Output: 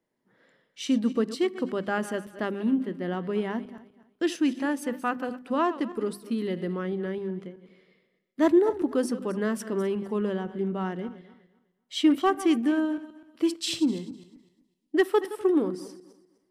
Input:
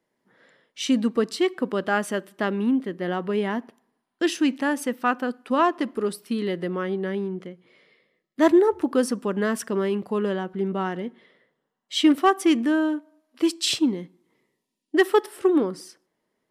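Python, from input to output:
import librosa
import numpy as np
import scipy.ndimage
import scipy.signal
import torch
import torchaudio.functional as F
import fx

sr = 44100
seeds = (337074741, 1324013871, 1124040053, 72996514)

y = fx.reverse_delay_fb(x, sr, ms=126, feedback_pct=47, wet_db=-14.0)
y = fx.low_shelf(y, sr, hz=330.0, db=7.0)
y = fx.hum_notches(y, sr, base_hz=50, count=5)
y = F.gain(torch.from_numpy(y), -6.5).numpy()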